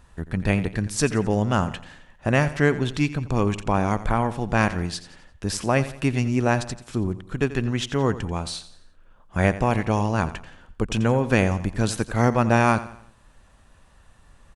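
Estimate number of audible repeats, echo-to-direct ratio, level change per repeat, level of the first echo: 3, -14.0 dB, -7.5 dB, -15.0 dB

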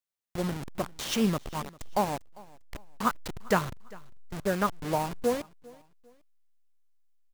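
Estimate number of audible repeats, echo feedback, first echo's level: 2, 35%, -23.0 dB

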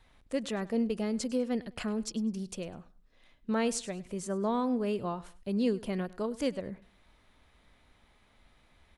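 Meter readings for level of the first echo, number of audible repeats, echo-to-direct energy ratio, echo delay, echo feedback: -20.0 dB, 2, -19.5 dB, 0.101 s, 30%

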